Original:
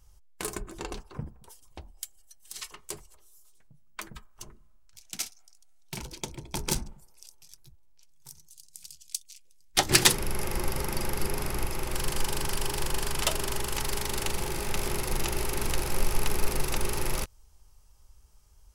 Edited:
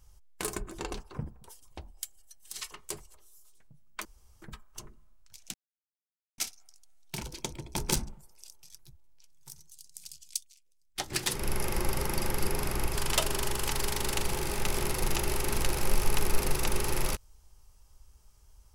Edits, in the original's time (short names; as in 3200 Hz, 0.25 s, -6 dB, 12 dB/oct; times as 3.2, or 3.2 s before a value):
4.05 insert room tone 0.37 s
5.17 insert silence 0.84 s
9.14–10.26 dip -11.5 dB, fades 0.19 s
11.74–13.04 cut